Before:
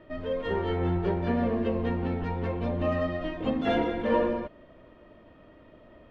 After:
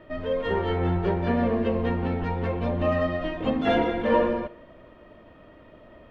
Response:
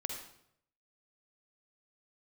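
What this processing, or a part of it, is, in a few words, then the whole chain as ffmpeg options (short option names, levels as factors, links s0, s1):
filtered reverb send: -filter_complex "[0:a]asplit=2[s0][s1];[s1]highpass=f=280:w=0.5412,highpass=f=280:w=1.3066,lowpass=4100[s2];[1:a]atrim=start_sample=2205[s3];[s2][s3]afir=irnorm=-1:irlink=0,volume=0.211[s4];[s0][s4]amix=inputs=2:normalize=0,volume=1.41"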